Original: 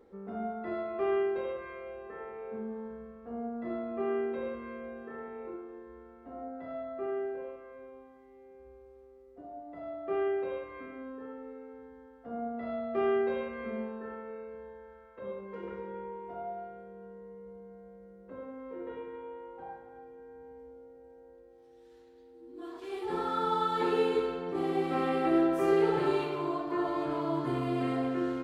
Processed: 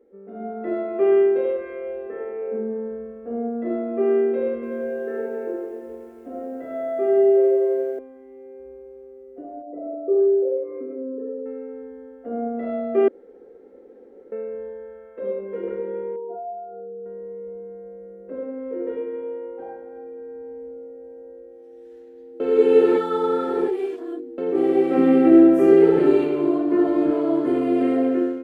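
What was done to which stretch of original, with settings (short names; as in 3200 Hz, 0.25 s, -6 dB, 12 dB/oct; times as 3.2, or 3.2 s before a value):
4.54–7.99 lo-fi delay 89 ms, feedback 80%, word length 11-bit, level -5 dB
9.62–11.46 formant sharpening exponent 2
13.08–14.32 room tone
16.16–17.06 spectral contrast raised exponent 2
22.4–24.38 reverse
24.97–27.11 resonant low shelf 320 Hz +7 dB, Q 1.5
whole clip: tone controls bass -7 dB, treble -6 dB; AGC gain up to 11 dB; graphic EQ 125/250/500/1000/4000 Hz -11/+8/+7/-11/-8 dB; gain -2.5 dB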